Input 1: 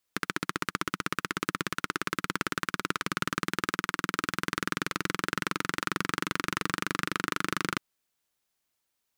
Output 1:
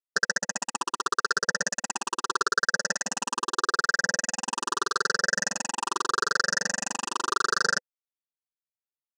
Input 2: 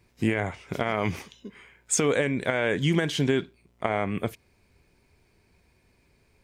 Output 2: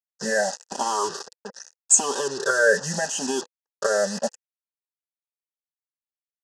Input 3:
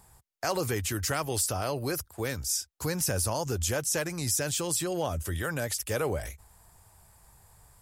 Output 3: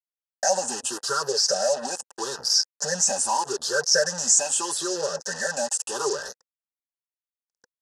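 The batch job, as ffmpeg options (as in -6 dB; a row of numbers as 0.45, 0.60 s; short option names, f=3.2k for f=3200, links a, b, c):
-filter_complex "[0:a]afftfilt=real='re*pow(10,21/40*sin(2*PI*(0.6*log(max(b,1)*sr/1024/100)/log(2)-(0.8)*(pts-256)/sr)))':imag='im*pow(10,21/40*sin(2*PI*(0.6*log(max(b,1)*sr/1024/100)/log(2)-(0.8)*(pts-256)/sr)))':win_size=1024:overlap=0.75,aemphasis=mode=reproduction:type=75kf,aecho=1:1:5.1:0.9,asplit=2[a][b];[b]acompressor=threshold=-33dB:ratio=12,volume=0dB[c];[a][c]amix=inputs=2:normalize=0,acrusher=bits=4:mix=0:aa=0.5,aexciter=amount=15.8:drive=2.8:freq=4.8k,asuperstop=centerf=2200:order=12:qfactor=3.7,highpass=330,equalizer=f=340:t=q:w=4:g=-6,equalizer=f=500:t=q:w=4:g=10,equalizer=f=870:t=q:w=4:g=8,equalizer=f=1.6k:t=q:w=4:g=7,equalizer=f=3.9k:t=q:w=4:g=-3,lowpass=f=6.4k:w=0.5412,lowpass=f=6.4k:w=1.3066,volume=-6.5dB"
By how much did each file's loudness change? 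+5.0, +3.5, +6.5 LU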